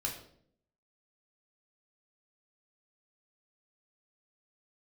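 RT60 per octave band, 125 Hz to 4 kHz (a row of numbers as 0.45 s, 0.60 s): 0.85 s, 0.85 s, 0.75 s, 0.55 s, 0.50 s, 0.50 s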